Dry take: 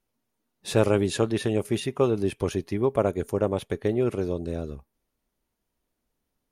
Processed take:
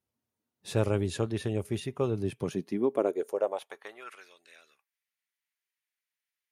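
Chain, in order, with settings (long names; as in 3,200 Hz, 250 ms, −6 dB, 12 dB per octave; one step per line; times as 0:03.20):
high-pass filter sweep 80 Hz → 2,000 Hz, 0:02.03–0:04.30
level −7.5 dB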